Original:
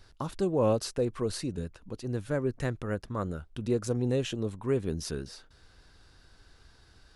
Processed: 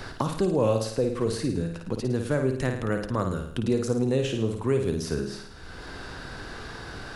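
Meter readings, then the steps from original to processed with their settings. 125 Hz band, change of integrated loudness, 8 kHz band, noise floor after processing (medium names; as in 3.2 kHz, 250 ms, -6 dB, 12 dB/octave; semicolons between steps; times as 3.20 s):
+5.0 dB, +4.5 dB, +2.5 dB, -41 dBFS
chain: flutter echo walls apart 9.2 m, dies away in 0.53 s; three bands compressed up and down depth 70%; trim +3.5 dB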